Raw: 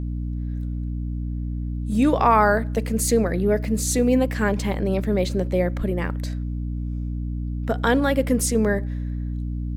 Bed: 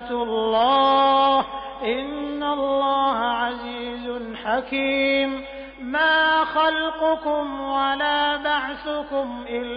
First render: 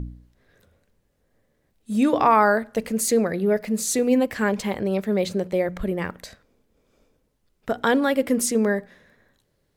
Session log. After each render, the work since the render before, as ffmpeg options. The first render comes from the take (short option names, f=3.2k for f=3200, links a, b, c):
-af "bandreject=f=60:t=h:w=4,bandreject=f=120:t=h:w=4,bandreject=f=180:t=h:w=4,bandreject=f=240:t=h:w=4,bandreject=f=300:t=h:w=4"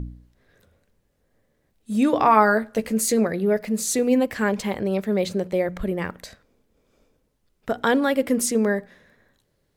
-filter_complex "[0:a]asettb=1/sr,asplit=3[a][b][c];[a]atrim=end=2.264[d];[b]atrim=start=2.26:end=3.27,asetpts=PTS-STARTPTS,afade=t=in:d=0.004:c=qsin,afade=t=out:st=1.006:d=0.004:c=qsin,asplit=2[e][f];[f]adelay=14,volume=-8dB[g];[e][g]amix=inputs=2:normalize=0,atrim=end_sample=44541[h];[c]atrim=start=3.266[i];[d][h]acrossfade=d=0.004:c1=hsin:c2=qsin[j];[j][i]acrossfade=d=0.004:c1=qsin:c2=hsin"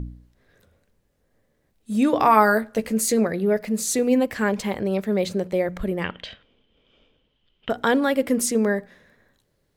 -filter_complex "[0:a]asettb=1/sr,asplit=3[a][b][c];[a]atrim=end=2.204[d];[b]atrim=start=2.2:end=2.61,asetpts=PTS-STARTPTS,afade=t=in:d=0.004:c=qsin,afade=t=out:st=0.406:d=0.004:c=qsin,equalizer=f=12k:w=0.64:g=12.5[e];[c]atrim=start=2.606[f];[d][e]acrossfade=d=0.004:c1=hsin:c2=qsin[g];[g][f]acrossfade=d=0.004:c1=qsin:c2=hsin,asettb=1/sr,asplit=3[h][i][j];[h]atrim=end=6.044[k];[i]atrim=start=6.04:end=7.7,asetpts=PTS-STARTPTS,afade=t=in:d=0.004:c=qsin,afade=t=out:st=1.656:d=0.004:c=qsin,lowpass=f=3.1k:t=q:w=15[l];[j]atrim=start=7.696[m];[k][l]acrossfade=d=0.004:c1=hsin:c2=qsin[n];[n][m]acrossfade=d=0.004:c1=qsin:c2=hsin"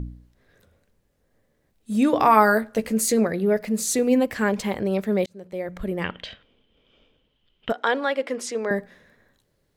-filter_complex "[0:a]asettb=1/sr,asplit=3[a][b][c];[a]atrim=end=7.724[d];[b]atrim=start=7.72:end=8.71,asetpts=PTS-STARTPTS,afade=t=in:d=0.004:c=qsin,afade=t=out:st=0.986:d=0.004:c=qsin,highpass=490,lowpass=4.9k[e];[c]atrim=start=8.706[f];[d][e]acrossfade=d=0.004:c1=hsin:c2=qsin[g];[g][f]acrossfade=d=0.004:c1=qsin:c2=hsin,asplit=2[h][i];[h]atrim=end=5.26,asetpts=PTS-STARTPTS,afade=t=out:st=5.256:d=0.004:c=hsin[j];[i]atrim=start=5.26,asetpts=PTS-STARTPTS,afade=t=in:d=0.81[k];[j][k]concat=n=2:v=0:a=1"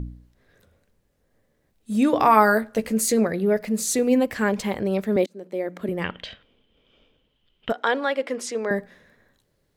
-filter_complex "[0:a]asettb=1/sr,asplit=3[a][b][c];[a]atrim=end=5.164[d];[b]atrim=start=5.16:end=5.89,asetpts=PTS-STARTPTS,afade=t=in:d=0.004:c=qsin,afade=t=out:st=0.726:d=0.004:c=qsin,highpass=f=270:t=q:w=2.1[e];[c]atrim=start=5.886[f];[d][e]acrossfade=d=0.004:c1=hsin:c2=qsin[g];[g][f]acrossfade=d=0.004:c1=qsin:c2=hsin"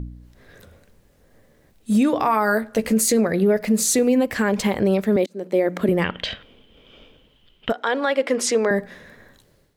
-af "dynaudnorm=f=100:g=5:m=12dB,alimiter=limit=-10dB:level=0:latency=1:release=204"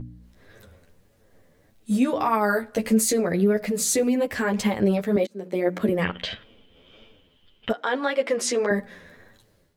-af "flanger=delay=8.9:depth=3:regen=0:speed=1.7:shape=sinusoidal"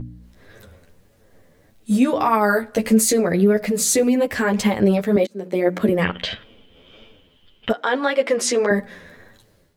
-af "volume=4.5dB"